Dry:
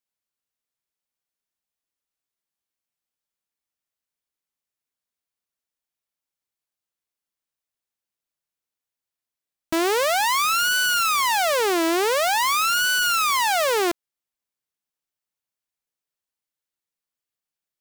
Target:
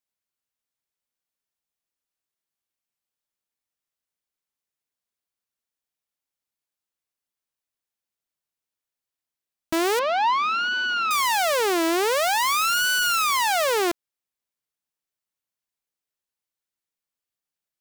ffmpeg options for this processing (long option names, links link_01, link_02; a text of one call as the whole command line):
ffmpeg -i in.wav -filter_complex "[0:a]asettb=1/sr,asplit=3[link_01][link_02][link_03];[link_01]atrim=end=9.994[link_04];[link_02]atrim=start=9.99:end=11.11,asetpts=PTS-STARTPTS,afade=type=in:duration=0.004:curve=qsin,afade=type=out:start_time=1.116:duration=0.004:curve=qsin,highpass=frequency=170:width=0.5412,highpass=frequency=170:width=1.3066,equalizer=frequency=230:width_type=q:width=4:gain=9,equalizer=frequency=350:width_type=q:width=4:gain=7,equalizer=frequency=500:width_type=q:width=4:gain=-5,equalizer=frequency=940:width_type=q:width=4:gain=5,equalizer=frequency=1900:width_type=q:width=4:gain=-10,equalizer=frequency=3400:width_type=q:width=4:gain=-4,lowpass=frequency=3700:width=0.5412,lowpass=frequency=3700:width=1.3066[link_05];[link_03]atrim=start=11.106[link_06];[link_04][link_05]acrossfade=duration=0.004:curve1=hsin:curve2=qsin[link_07];[link_07][link_06]acrossfade=duration=0.004:curve1=qsin:curve2=hsin,volume=-1dB" out.wav